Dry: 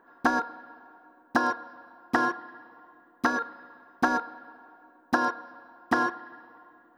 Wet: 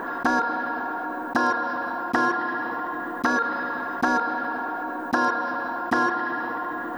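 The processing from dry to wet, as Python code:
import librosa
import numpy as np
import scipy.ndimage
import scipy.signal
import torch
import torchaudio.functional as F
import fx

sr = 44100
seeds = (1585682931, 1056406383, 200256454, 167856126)

y = fx.env_flatten(x, sr, amount_pct=70)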